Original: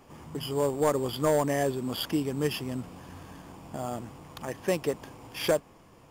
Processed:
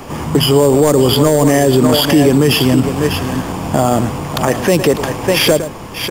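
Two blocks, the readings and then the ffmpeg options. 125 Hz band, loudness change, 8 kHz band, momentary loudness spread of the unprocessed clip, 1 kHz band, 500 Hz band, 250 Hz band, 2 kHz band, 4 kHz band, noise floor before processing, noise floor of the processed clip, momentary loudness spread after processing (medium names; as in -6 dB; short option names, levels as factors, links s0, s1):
+20.5 dB, +17.0 dB, +19.0 dB, 18 LU, +16.0 dB, +16.5 dB, +20.0 dB, +18.0 dB, +20.5 dB, -56 dBFS, -29 dBFS, 8 LU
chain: -filter_complex "[0:a]asplit=2[s0][s1];[s1]aecho=0:1:598:0.251[s2];[s0][s2]amix=inputs=2:normalize=0,acrossover=split=470|3000[s3][s4][s5];[s4]acompressor=threshold=0.0224:ratio=6[s6];[s3][s6][s5]amix=inputs=3:normalize=0,asplit=2[s7][s8];[s8]aecho=0:1:110:0.112[s9];[s7][s9]amix=inputs=2:normalize=0,alimiter=level_in=18.8:limit=0.891:release=50:level=0:latency=1,volume=0.891"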